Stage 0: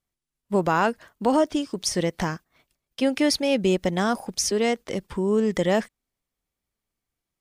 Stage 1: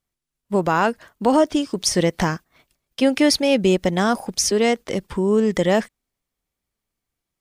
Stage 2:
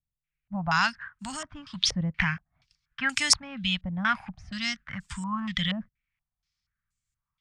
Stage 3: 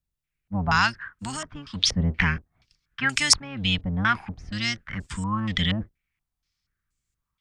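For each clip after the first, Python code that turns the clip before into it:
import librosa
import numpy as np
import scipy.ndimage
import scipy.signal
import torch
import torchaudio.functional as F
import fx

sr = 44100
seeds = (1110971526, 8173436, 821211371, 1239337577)

y1 = fx.rider(x, sr, range_db=10, speed_s=2.0)
y1 = y1 * 10.0 ** (4.0 / 20.0)
y2 = scipy.signal.sosfilt(scipy.signal.cheby1(2, 1.0, [130.0, 1400.0], 'bandstop', fs=sr, output='sos'), y1)
y2 = fx.rotary(y2, sr, hz=0.9)
y2 = fx.filter_held_lowpass(y2, sr, hz=4.2, low_hz=490.0, high_hz=7600.0)
y3 = fx.octave_divider(y2, sr, octaves=1, level_db=-1.0)
y3 = y3 * 10.0 ** (3.0 / 20.0)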